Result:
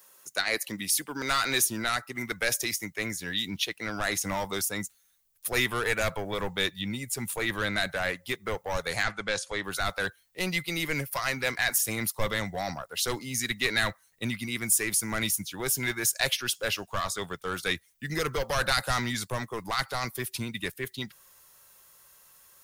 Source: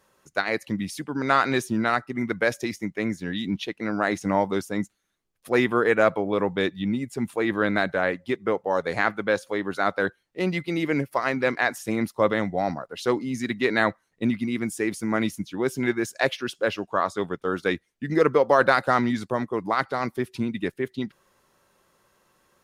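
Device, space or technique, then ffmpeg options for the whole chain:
one-band saturation: -filter_complex "[0:a]aemphasis=mode=production:type=riaa,acrossover=split=270|2200[a][b][c];[b]asoftclip=type=tanh:threshold=-26.5dB[d];[a][d][c]amix=inputs=3:normalize=0,asettb=1/sr,asplit=3[e][f][g];[e]atrim=end=9.034[h];[f]atrim=start=9.03:end=9.64,asetpts=PTS-STARTPTS,afade=t=in:d=0.004:c=qsin,afade=t=out:st=0.606:d=0.004:c=qsin,lowpass=f=8.3k:w=0.5412,lowpass=f=8.3k:w=1.3066[i];[g]atrim=start=9.636[j];[h][i]acrossfade=d=0.004:c1=hsin:c2=qsin[k];[k][j]acrossfade=d=0.004:c1=qsin:c2=hsin,asubboost=boost=10.5:cutoff=85"

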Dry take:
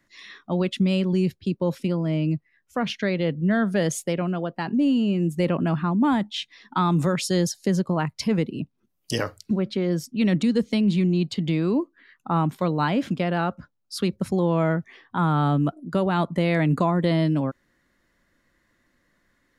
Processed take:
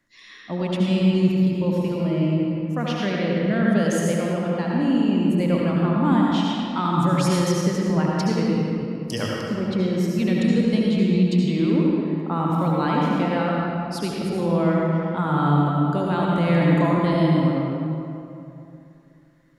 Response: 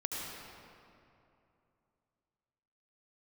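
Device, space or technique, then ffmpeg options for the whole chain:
stairwell: -filter_complex "[1:a]atrim=start_sample=2205[a];[0:a][a]afir=irnorm=-1:irlink=0,volume=-1.5dB"

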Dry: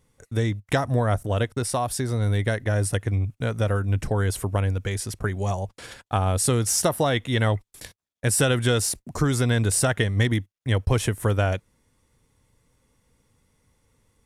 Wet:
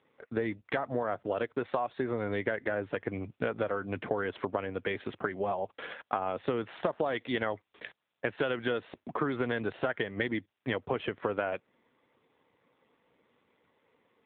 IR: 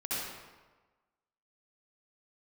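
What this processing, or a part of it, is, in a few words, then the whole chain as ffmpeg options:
voicemail: -af "highpass=320,lowpass=3.1k,acompressor=threshold=-32dB:ratio=6,volume=5dB" -ar 8000 -c:a libopencore_amrnb -b:a 7400

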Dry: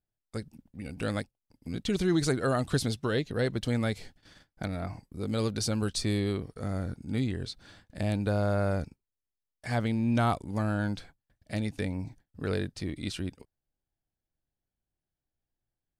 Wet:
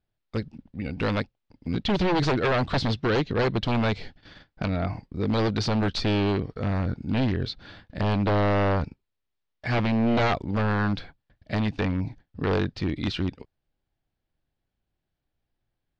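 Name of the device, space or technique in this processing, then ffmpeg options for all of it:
synthesiser wavefolder: -af "aeval=exprs='0.0562*(abs(mod(val(0)/0.0562+3,4)-2)-1)':c=same,lowpass=f=4.4k:w=0.5412,lowpass=f=4.4k:w=1.3066,volume=8dB"

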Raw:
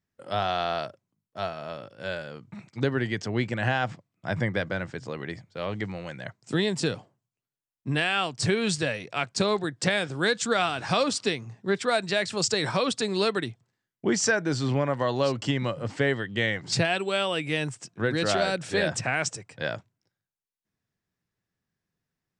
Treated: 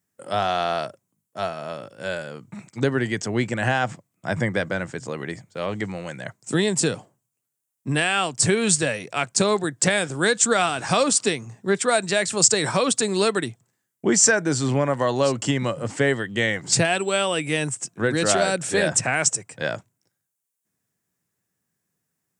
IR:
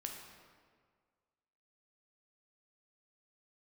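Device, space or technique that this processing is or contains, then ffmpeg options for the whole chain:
budget condenser microphone: -af "highpass=110,highshelf=f=6k:t=q:w=1.5:g=9,volume=4.5dB"

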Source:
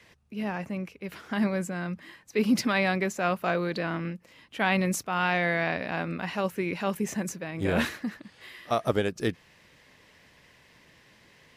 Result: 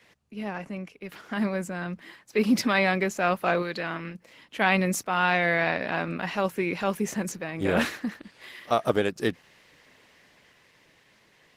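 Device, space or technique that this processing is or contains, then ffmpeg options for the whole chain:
video call: -filter_complex "[0:a]asettb=1/sr,asplit=3[a][b][c];[a]atrim=end=3.624[d];[b]atrim=start=3.62:end=4.15,asetpts=PTS-STARTPTS,afade=t=in:d=0.004:c=qsin,afade=t=out:st=0.526:d=0.004:c=qsin,equalizer=f=260:w=0.35:g=-6[e];[c]atrim=start=4.146[f];[d][e]acrossfade=d=0.004:c1=hsin:c2=qsin[g];[g][f]acrossfade=d=0.004:c1=qsin:c2=hsin,highpass=f=170:p=1,dynaudnorm=f=280:g=13:m=3.5dB" -ar 48000 -c:a libopus -b:a 16k

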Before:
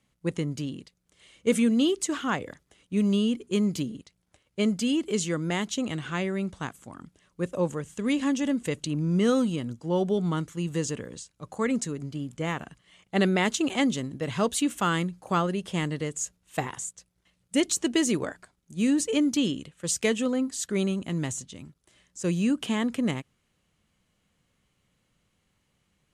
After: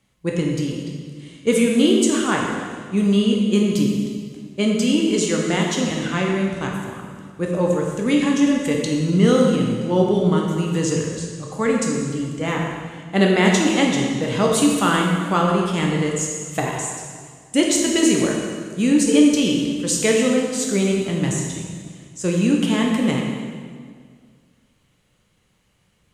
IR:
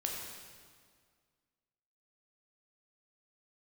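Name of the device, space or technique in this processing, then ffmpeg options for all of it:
stairwell: -filter_complex "[1:a]atrim=start_sample=2205[a];[0:a][a]afir=irnorm=-1:irlink=0,volume=6dB"

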